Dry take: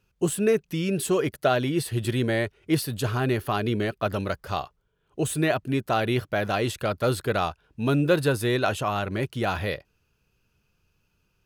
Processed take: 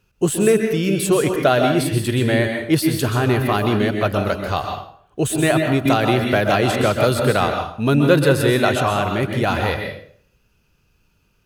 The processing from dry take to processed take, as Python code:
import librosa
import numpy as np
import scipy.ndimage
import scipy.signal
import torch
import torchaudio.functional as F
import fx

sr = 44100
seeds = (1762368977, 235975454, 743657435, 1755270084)

y = fx.rev_plate(x, sr, seeds[0], rt60_s=0.57, hf_ratio=0.8, predelay_ms=115, drr_db=3.5)
y = fx.band_squash(y, sr, depth_pct=100, at=(5.85, 7.48))
y = F.gain(torch.from_numpy(y), 6.0).numpy()